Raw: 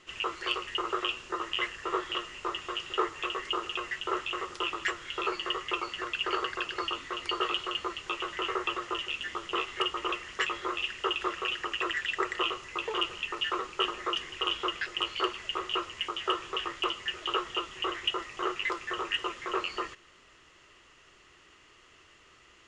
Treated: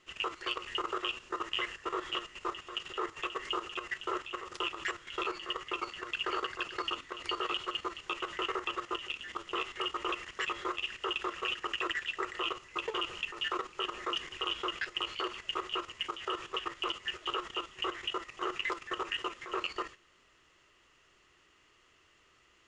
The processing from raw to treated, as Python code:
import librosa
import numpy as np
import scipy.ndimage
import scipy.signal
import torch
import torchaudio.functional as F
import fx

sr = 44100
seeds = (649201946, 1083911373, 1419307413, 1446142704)

y = fx.level_steps(x, sr, step_db=11)